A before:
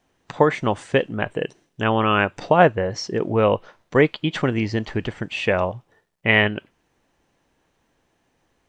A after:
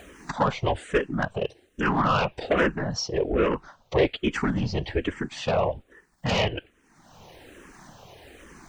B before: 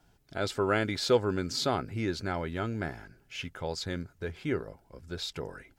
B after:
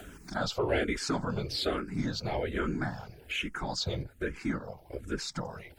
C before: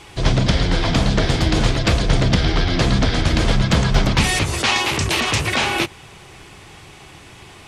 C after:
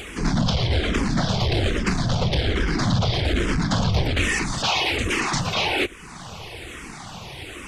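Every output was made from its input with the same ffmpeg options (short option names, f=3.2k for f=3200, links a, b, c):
-filter_complex "[0:a]afftfilt=real='hypot(re,im)*cos(2*PI*random(0))':imag='hypot(re,im)*sin(2*PI*random(1))':win_size=512:overlap=0.75,asplit=2[a][b];[b]acompressor=mode=upward:threshold=-27dB:ratio=2.5,volume=2.5dB[c];[a][c]amix=inputs=2:normalize=0,asoftclip=type=tanh:threshold=-12.5dB,acrossover=split=8000[d][e];[e]acompressor=threshold=-48dB:ratio=4:attack=1:release=60[f];[d][f]amix=inputs=2:normalize=0,asplit=2[g][h];[h]afreqshift=-1.2[i];[g][i]amix=inputs=2:normalize=1"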